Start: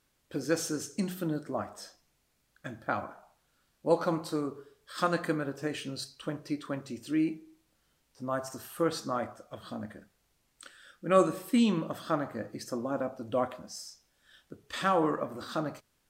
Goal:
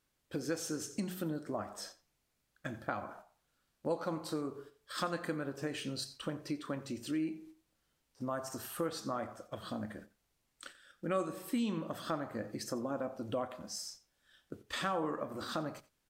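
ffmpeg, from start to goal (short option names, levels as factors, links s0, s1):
-af "agate=range=0.398:threshold=0.00251:ratio=16:detection=peak,acompressor=threshold=0.0126:ratio=2.5,aecho=1:1:89:0.112,volume=1.19"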